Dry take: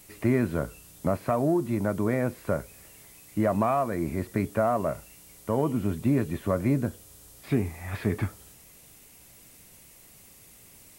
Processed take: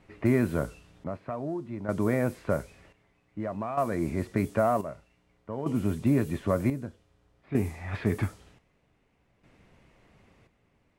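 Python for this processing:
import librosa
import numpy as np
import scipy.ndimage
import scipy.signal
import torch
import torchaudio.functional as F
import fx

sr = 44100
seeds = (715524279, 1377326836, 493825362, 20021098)

y = fx.chopper(x, sr, hz=0.53, depth_pct=65, duty_pct=55)
y = fx.env_lowpass(y, sr, base_hz=1800.0, full_db=-22.0)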